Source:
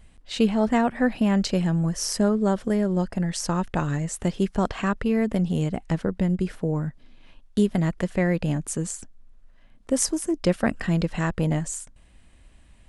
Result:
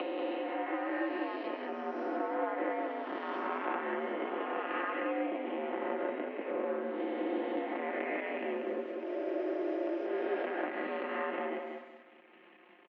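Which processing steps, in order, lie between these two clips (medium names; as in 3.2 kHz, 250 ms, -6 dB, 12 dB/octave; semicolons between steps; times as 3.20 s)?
reverse spectral sustain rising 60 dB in 2.58 s; compression 10:1, threshold -33 dBFS, peak gain reduction 19.5 dB; crossover distortion -47 dBFS; mistuned SSB +75 Hz 210–2700 Hz; comb 5.6 ms, depth 64%; gain riding 2 s; feedback delay 188 ms, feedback 24%, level -5 dB; spring tank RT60 2.1 s, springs 60 ms, DRR 17 dB; trim +3 dB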